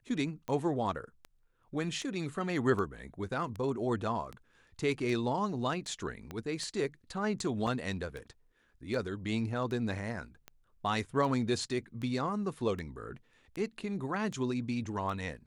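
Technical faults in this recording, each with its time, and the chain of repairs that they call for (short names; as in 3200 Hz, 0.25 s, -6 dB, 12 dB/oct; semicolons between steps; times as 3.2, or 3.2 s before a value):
tick 78 rpm -28 dBFS
6.31 pop -26 dBFS
7.67 gap 3.5 ms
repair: de-click; interpolate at 7.67, 3.5 ms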